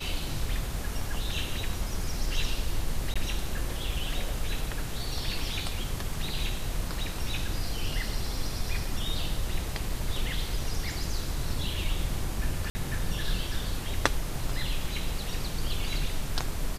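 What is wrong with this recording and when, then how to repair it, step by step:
0:03.14–0:03.16: drop-out 16 ms
0:12.70–0:12.75: drop-out 50 ms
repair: repair the gap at 0:03.14, 16 ms
repair the gap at 0:12.70, 50 ms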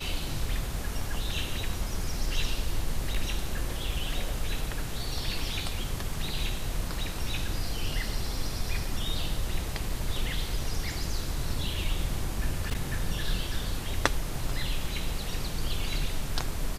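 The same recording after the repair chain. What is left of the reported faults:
none of them is left

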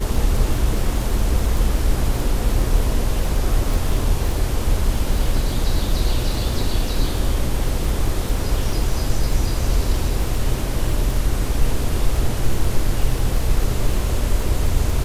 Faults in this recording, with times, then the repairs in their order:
surface crackle 28 per second −23 dBFS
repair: click removal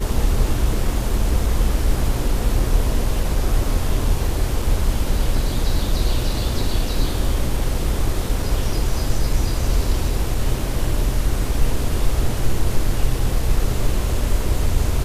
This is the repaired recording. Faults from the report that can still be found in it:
none of them is left

